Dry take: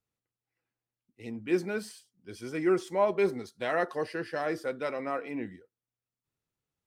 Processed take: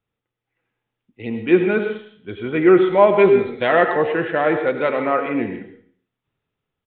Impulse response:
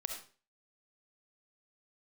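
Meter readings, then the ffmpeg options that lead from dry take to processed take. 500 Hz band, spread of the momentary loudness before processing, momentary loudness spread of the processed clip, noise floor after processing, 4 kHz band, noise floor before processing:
+14.0 dB, 16 LU, 17 LU, -83 dBFS, +11.0 dB, under -85 dBFS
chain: -filter_complex "[0:a]dynaudnorm=f=110:g=11:m=5dB,asplit=2[a][b];[1:a]atrim=start_sample=2205,asetrate=29547,aresample=44100[c];[b][c]afir=irnorm=-1:irlink=0,volume=3dB[d];[a][d]amix=inputs=2:normalize=0,aresample=8000,aresample=44100"

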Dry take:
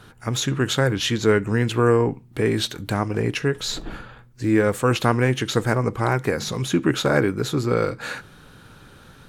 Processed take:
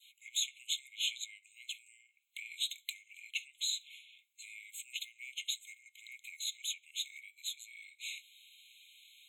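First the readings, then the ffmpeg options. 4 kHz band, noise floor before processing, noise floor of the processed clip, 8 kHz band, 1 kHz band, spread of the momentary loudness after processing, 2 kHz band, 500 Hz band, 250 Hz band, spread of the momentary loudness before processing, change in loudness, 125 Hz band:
-8.0 dB, -49 dBFS, -73 dBFS, -8.0 dB, under -40 dB, 19 LU, -18.5 dB, under -40 dB, under -40 dB, 8 LU, -17.5 dB, under -40 dB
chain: -af "acompressor=threshold=-25dB:ratio=6,adynamicequalizer=threshold=0.00562:dfrequency=2300:dqfactor=1.3:tfrequency=2300:tqfactor=1.3:attack=5:release=100:ratio=0.375:range=1.5:mode=cutabove:tftype=bell,afftfilt=real='re*eq(mod(floor(b*sr/1024/2100),2),1)':imag='im*eq(mod(floor(b*sr/1024/2100),2),1)':win_size=1024:overlap=0.75,volume=-2dB"

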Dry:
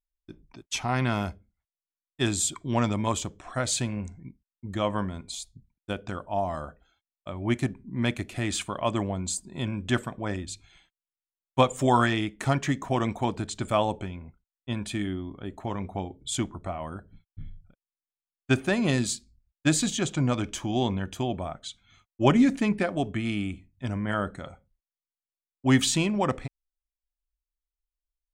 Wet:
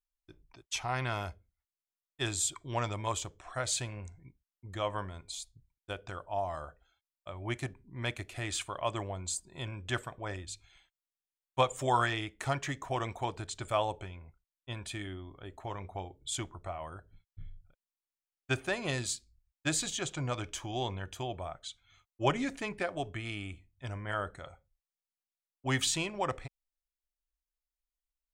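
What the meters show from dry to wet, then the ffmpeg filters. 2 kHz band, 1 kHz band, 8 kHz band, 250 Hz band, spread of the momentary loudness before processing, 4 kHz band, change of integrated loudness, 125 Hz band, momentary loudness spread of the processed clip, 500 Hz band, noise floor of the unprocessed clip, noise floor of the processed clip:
-4.5 dB, -5.0 dB, -4.5 dB, -14.5 dB, 16 LU, -4.5 dB, -7.5 dB, -8.5 dB, 15 LU, -7.0 dB, under -85 dBFS, under -85 dBFS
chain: -af "equalizer=f=220:w=1.5:g=-14.5,volume=-4.5dB"

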